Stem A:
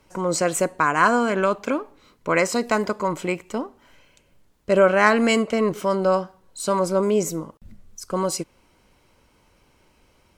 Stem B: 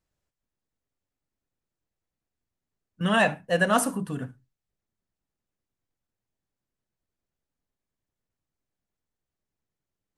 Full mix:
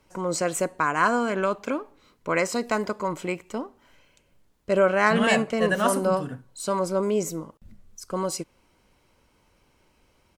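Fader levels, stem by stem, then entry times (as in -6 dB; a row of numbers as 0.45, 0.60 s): -4.0, -2.0 dB; 0.00, 2.10 s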